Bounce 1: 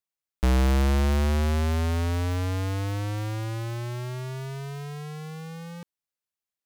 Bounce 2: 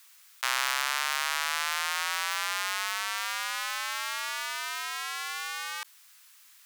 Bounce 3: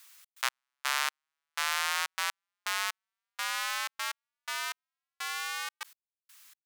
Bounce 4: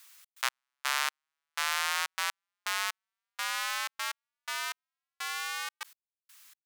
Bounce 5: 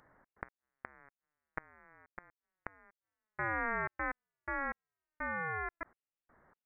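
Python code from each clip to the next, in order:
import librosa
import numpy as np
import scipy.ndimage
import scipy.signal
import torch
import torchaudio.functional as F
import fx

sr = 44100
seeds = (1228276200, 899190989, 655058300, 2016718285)

y1 = scipy.signal.sosfilt(scipy.signal.butter(4, 1100.0, 'highpass', fs=sr, output='sos'), x)
y1 = fx.env_flatten(y1, sr, amount_pct=50)
y1 = y1 * librosa.db_to_amplitude(7.0)
y2 = fx.step_gate(y1, sr, bpm=124, pattern='xx.x...xx....xx', floor_db=-60.0, edge_ms=4.5)
y3 = y2
y4 = fx.freq_invert(y3, sr, carrier_hz=2900)
y4 = fx.gate_flip(y4, sr, shuts_db=-22.0, range_db=-29)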